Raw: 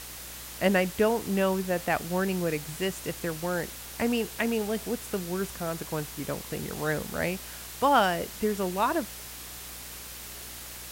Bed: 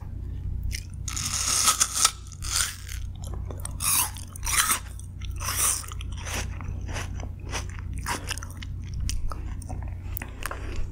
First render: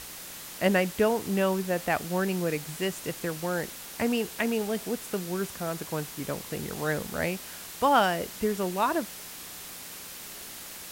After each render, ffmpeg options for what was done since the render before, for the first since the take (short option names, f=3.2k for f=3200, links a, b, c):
-af "bandreject=f=60:t=h:w=4,bandreject=f=120:t=h:w=4"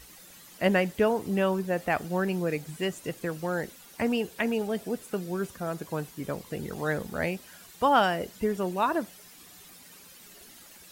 -af "afftdn=nr=12:nf=-42"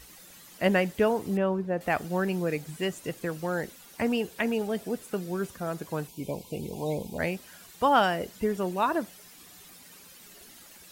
-filter_complex "[0:a]asettb=1/sr,asplit=3[a][b][c];[a]atrim=end=1.374[d];[b]atrim=start=1.37:end=1.81,asetpts=PTS-STARTPTS,afade=t=in:d=0.004:c=qsin,afade=t=out:st=0.436:d=0.004:c=qsin,lowpass=f=1.1k:p=1[e];[c]atrim=start=1.806[f];[d][e]acrossfade=d=0.004:c1=hsin:c2=qsin[g];[g][f]acrossfade=d=0.004:c1=qsin:c2=hsin,asplit=3[h][i][j];[h]afade=t=out:st=6.07:d=0.02[k];[i]asuperstop=centerf=1500:order=20:qfactor=1.3,afade=t=in:st=6.07:d=0.02,afade=t=out:st=7.18:d=0.02[l];[j]afade=t=in:st=7.18:d=0.02[m];[k][l][m]amix=inputs=3:normalize=0"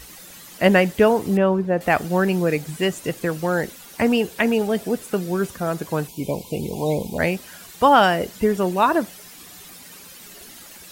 -af "volume=8.5dB,alimiter=limit=-3dB:level=0:latency=1"